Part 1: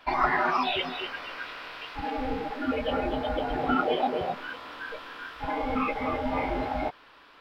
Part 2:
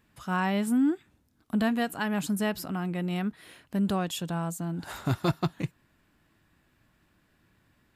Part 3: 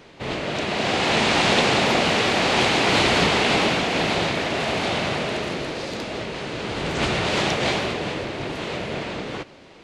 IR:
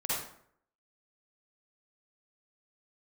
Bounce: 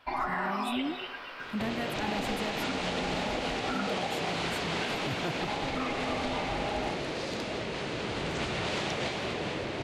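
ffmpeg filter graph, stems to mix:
-filter_complex "[0:a]volume=-7dB,asplit=2[link_01][link_02];[link_02]volume=-10dB[link_03];[1:a]volume=-7dB[link_04];[2:a]acompressor=threshold=-31dB:ratio=2.5,adelay=1400,volume=-1.5dB[link_05];[3:a]atrim=start_sample=2205[link_06];[link_03][link_06]afir=irnorm=-1:irlink=0[link_07];[link_01][link_04][link_05][link_07]amix=inputs=4:normalize=0,alimiter=limit=-22dB:level=0:latency=1:release=195"

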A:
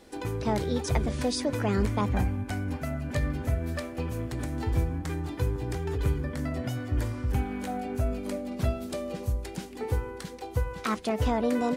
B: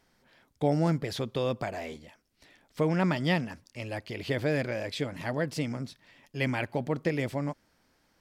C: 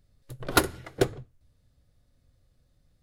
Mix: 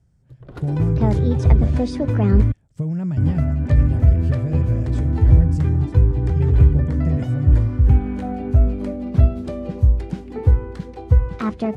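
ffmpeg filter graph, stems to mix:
ffmpeg -i stem1.wav -i stem2.wav -i stem3.wav -filter_complex "[0:a]adelay=550,volume=1.5dB,asplit=3[link_01][link_02][link_03];[link_01]atrim=end=2.52,asetpts=PTS-STARTPTS,afade=type=out:start_time=2.516:duration=0.004:curve=hsin[link_04];[link_02]atrim=start=2.52:end=3.17,asetpts=PTS-STARTPTS,volume=0[link_05];[link_03]atrim=start=3.17,asetpts=PTS-STARTPTS,afade=type=in:duration=0.004:curve=hsin[link_06];[link_04][link_05][link_06]concat=n=3:v=0:a=1[link_07];[1:a]equalizer=frequency=125:width_type=o:width=1:gain=8,equalizer=frequency=250:width_type=o:width=1:gain=-9,equalizer=frequency=500:width_type=o:width=1:gain=-6,equalizer=frequency=1000:width_type=o:width=1:gain=-9,equalizer=frequency=2000:width_type=o:width=1:gain=-9,equalizer=frequency=4000:width_type=o:width=1:gain=-11,equalizer=frequency=8000:width_type=o:width=1:gain=12,acompressor=threshold=-31dB:ratio=3,volume=0.5dB[link_08];[2:a]alimiter=limit=-14dB:level=0:latency=1:release=250,volume=-11.5dB[link_09];[link_07][link_08][link_09]amix=inputs=3:normalize=0,highpass=55,aemphasis=mode=reproduction:type=riaa" out.wav

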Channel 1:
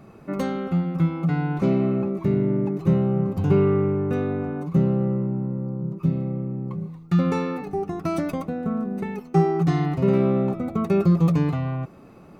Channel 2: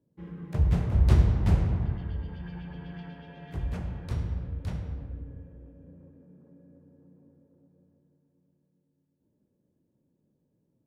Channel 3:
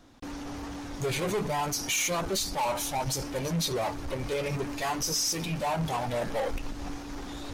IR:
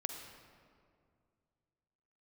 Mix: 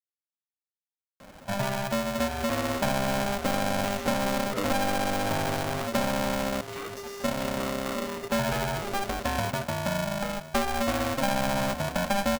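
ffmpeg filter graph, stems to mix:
-filter_complex "[0:a]adelay=1200,volume=-2.5dB,asplit=3[link_01][link_02][link_03];[link_01]atrim=end=6.61,asetpts=PTS-STARTPTS,afade=type=out:start_time=6.606:duration=0.004:curve=hsin[link_04];[link_02]atrim=start=6.61:end=7.19,asetpts=PTS-STARTPTS,volume=0[link_05];[link_03]atrim=start=7.19,asetpts=PTS-STARTPTS,afade=type=in:duration=0.004:curve=hsin[link_06];[link_04][link_05][link_06]concat=n=3:v=0:a=1,asplit=2[link_07][link_08];[link_08]volume=-18.5dB[link_09];[2:a]aeval=exprs='max(val(0),0)':channel_layout=same,adelay=1950,volume=-0.5dB,asplit=2[link_10][link_11];[link_11]volume=-15.5dB[link_12];[link_10]acompressor=threshold=-35dB:ratio=6,volume=0dB[link_13];[3:a]atrim=start_sample=2205[link_14];[link_09][link_12]amix=inputs=2:normalize=0[link_15];[link_15][link_14]afir=irnorm=-1:irlink=0[link_16];[link_07][link_13][link_16]amix=inputs=3:normalize=0,acrossover=split=300|3000[link_17][link_18][link_19];[link_17]acompressor=threshold=-28dB:ratio=4[link_20];[link_18]acompressor=threshold=-28dB:ratio=4[link_21];[link_19]acompressor=threshold=-51dB:ratio=4[link_22];[link_20][link_21][link_22]amix=inputs=3:normalize=0,aeval=exprs='val(0)*sgn(sin(2*PI*400*n/s))':channel_layout=same"

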